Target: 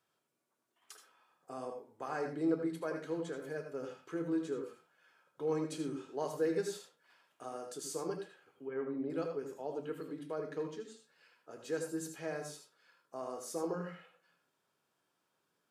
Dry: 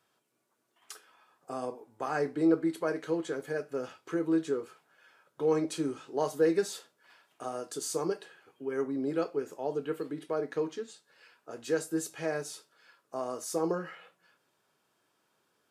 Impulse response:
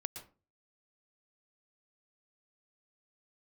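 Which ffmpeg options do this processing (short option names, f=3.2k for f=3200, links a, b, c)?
-filter_complex "[0:a]asettb=1/sr,asplit=3[a][b][c];[a]atrim=end=8.674[d];[b]atrim=start=8.67:end=9.1,asetpts=PTS-STARTPTS,afade=t=in:d=0.004:c=qsin,afade=t=out:st=0.426:d=0.004:c=qsin,lowpass=f=3.2k:w=0.5412,lowpass=f=3.2k:w=1.3066[e];[c]atrim=start=9.096[f];[d][e]acrossfade=d=0.004:c1=hsin:c2=qsin[g];[g][f]acrossfade=d=0.004:c1=qsin:c2=hsin[h];[1:a]atrim=start_sample=2205,asetrate=66150,aresample=44100[i];[h][i]afir=irnorm=-1:irlink=0,volume=-1.5dB"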